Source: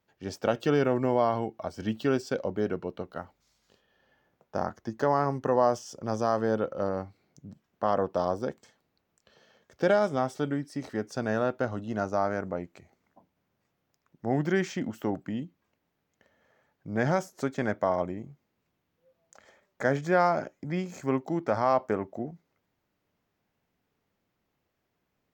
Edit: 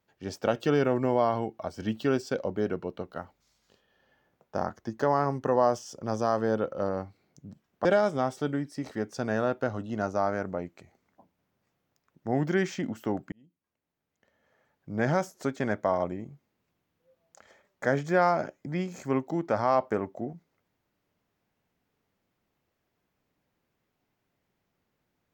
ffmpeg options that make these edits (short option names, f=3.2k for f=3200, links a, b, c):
-filter_complex "[0:a]asplit=3[a][b][c];[a]atrim=end=7.852[d];[b]atrim=start=9.828:end=15.3,asetpts=PTS-STARTPTS,afade=t=out:st=5.468:d=0.004:c=hsin[e];[c]atrim=start=15.3,asetpts=PTS-STARTPTS,afade=t=in:d=1.58[f];[e][f]concat=n=2:v=0:a=1[g];[d][g]acrossfade=d=0.004:c1=hsin:c2=hsin"